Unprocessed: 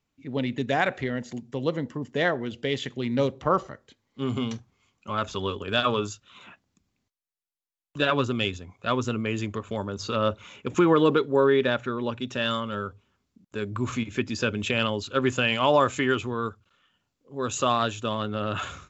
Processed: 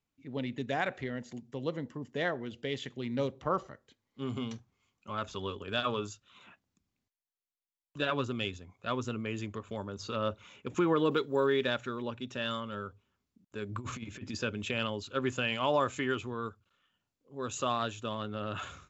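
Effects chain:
0:11.11–0:12.02: high-shelf EQ 3,500 Hz +10.5 dB
0:13.69–0:14.38: compressor whose output falls as the input rises −30 dBFS, ratio −0.5
level −8 dB

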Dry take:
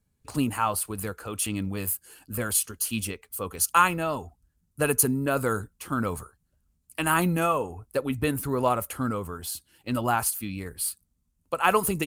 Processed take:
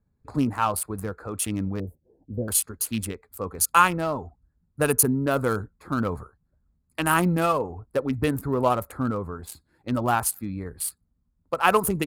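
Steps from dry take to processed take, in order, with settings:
adaptive Wiener filter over 15 samples
0:01.80–0:02.48: inverse Chebyshev low-pass filter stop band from 1,200 Hz, stop band 40 dB
level +2.5 dB

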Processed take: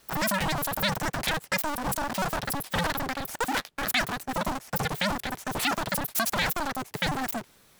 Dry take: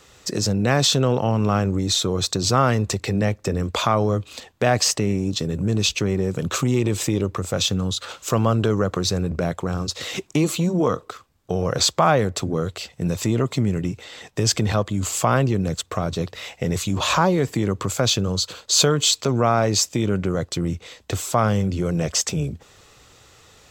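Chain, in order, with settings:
sub-harmonics by changed cycles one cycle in 2, inverted
change of speed 3.04×
level −7.5 dB

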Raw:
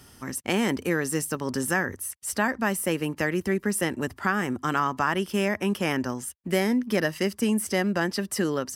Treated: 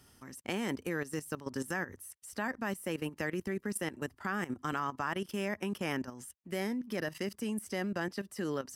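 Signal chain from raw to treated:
output level in coarse steps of 14 dB
level −6 dB

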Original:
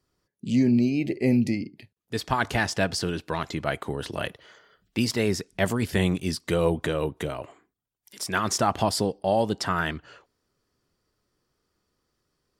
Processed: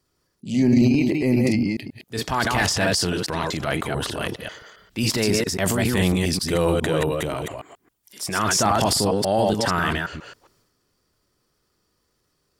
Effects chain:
delay that plays each chunk backwards 136 ms, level −3 dB
high-shelf EQ 5,200 Hz +5 dB
transient designer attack −5 dB, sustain +7 dB
level +2.5 dB

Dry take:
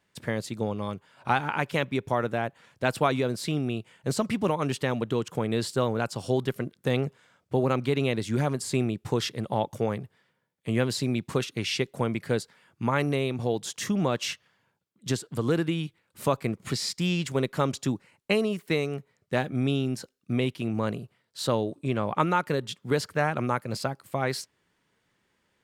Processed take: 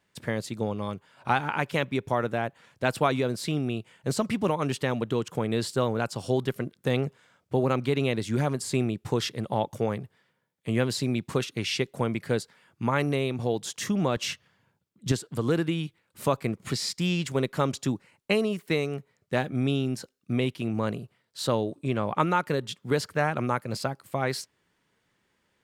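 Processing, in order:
0:14.16–0:15.12: low-shelf EQ 240 Hz +9 dB

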